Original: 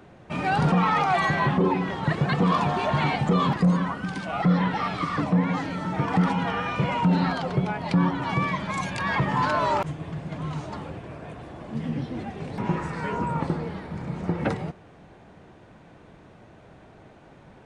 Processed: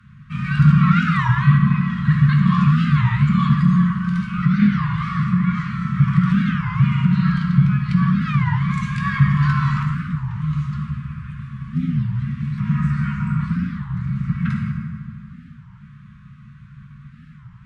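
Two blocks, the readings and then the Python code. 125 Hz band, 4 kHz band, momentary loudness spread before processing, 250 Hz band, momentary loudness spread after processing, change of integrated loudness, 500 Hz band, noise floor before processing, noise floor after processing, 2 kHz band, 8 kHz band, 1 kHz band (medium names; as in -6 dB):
+11.0 dB, -1.5 dB, 12 LU, +7.0 dB, 11 LU, +6.5 dB, under -25 dB, -51 dBFS, -44 dBFS, +2.5 dB, no reading, -2.0 dB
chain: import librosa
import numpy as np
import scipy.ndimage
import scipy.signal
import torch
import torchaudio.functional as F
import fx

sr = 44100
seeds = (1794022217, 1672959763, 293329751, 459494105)

y = scipy.signal.sosfilt(scipy.signal.cheby1(5, 1.0, [220.0, 1100.0], 'bandstop', fs=sr, output='sos'), x)
y = fx.high_shelf(y, sr, hz=4300.0, db=-8.5)
y = fx.rev_fdn(y, sr, rt60_s=2.2, lf_ratio=1.1, hf_ratio=0.55, size_ms=42.0, drr_db=-0.5)
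y = fx.cheby_harmonics(y, sr, harmonics=(6,), levels_db=(-42,), full_scale_db=-5.5)
y = fx.bass_treble(y, sr, bass_db=5, treble_db=-2)
y = fx.record_warp(y, sr, rpm=33.33, depth_cents=250.0)
y = y * 10.0 ** (1.0 / 20.0)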